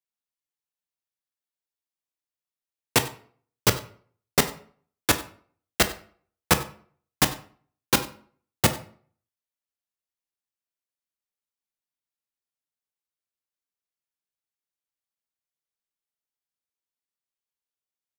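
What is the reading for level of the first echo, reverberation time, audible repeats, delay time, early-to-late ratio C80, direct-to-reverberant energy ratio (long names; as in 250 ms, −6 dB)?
−20.0 dB, 0.50 s, 1, 95 ms, 16.5 dB, 8.5 dB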